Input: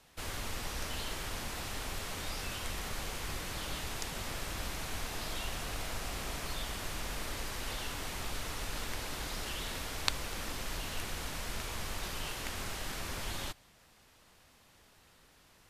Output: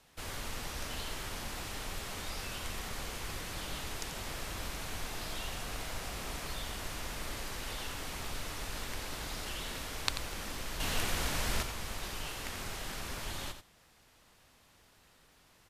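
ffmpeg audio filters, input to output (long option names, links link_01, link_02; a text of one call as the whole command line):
ffmpeg -i in.wav -filter_complex "[0:a]asettb=1/sr,asplit=3[link_01][link_02][link_03];[link_01]atrim=end=10.804[link_04];[link_02]atrim=start=10.8:end=11.63,asetpts=PTS-STARTPTS,afade=type=in:duration=0.004:curve=qsin,afade=type=out:start_time=0.826:duration=0.004:curve=qsin,acontrast=77[link_05];[link_03]atrim=start=11.626[link_06];[link_04][link_05]acrossfade=duration=0.004:curve1=hsin:curve2=qsin[link_07];[link_07][link_06]acrossfade=duration=0.004:curve1=qsin:curve2=hsin,aecho=1:1:88:0.335,volume=-1.5dB" out.wav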